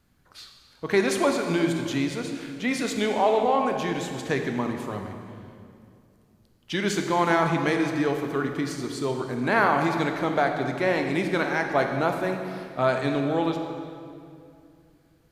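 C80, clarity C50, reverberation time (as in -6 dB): 6.0 dB, 5.0 dB, 2.5 s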